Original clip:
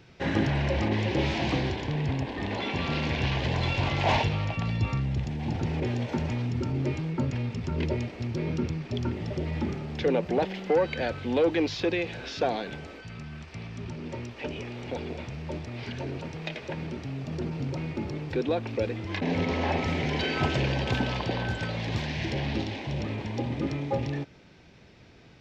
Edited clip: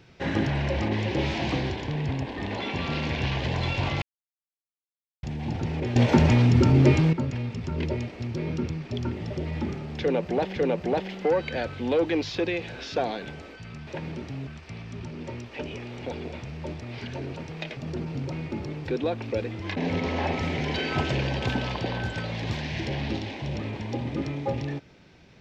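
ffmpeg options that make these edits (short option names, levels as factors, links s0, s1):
-filter_complex "[0:a]asplit=9[s0][s1][s2][s3][s4][s5][s6][s7][s8];[s0]atrim=end=4.02,asetpts=PTS-STARTPTS,afade=t=out:st=4.016:d=0.004:c=hsin[s9];[s1]atrim=start=4.02:end=5.23,asetpts=PTS-STARTPTS,volume=0[s10];[s2]atrim=start=5.23:end=5.962,asetpts=PTS-STARTPTS,afade=t=in:d=0.004:c=hsin[s11];[s3]atrim=start=5.958:end=7.132,asetpts=PTS-STARTPTS,volume=3.55[s12];[s4]atrim=start=7.128:end=10.562[s13];[s5]atrim=start=10.008:end=13.322[s14];[s6]atrim=start=16.618:end=17.222[s15];[s7]atrim=start=13.318:end=16.622[s16];[s8]atrim=start=17.218[s17];[s9][s10][s11]concat=n=3:v=0:a=1[s18];[s18][s12]acrossfade=d=0.004:c1=hsin:c2=hsin[s19];[s19][s13]acrossfade=d=0.004:c1=hsin:c2=hsin[s20];[s20][s14]acrossfade=d=0.004:c1=hsin:c2=hsin[s21];[s21][s15]acrossfade=d=0.004:c1=hsin:c2=hsin[s22];[s22][s16]acrossfade=d=0.004:c1=hsin:c2=hsin[s23];[s23][s17]acrossfade=d=0.004:c1=hsin:c2=hsin"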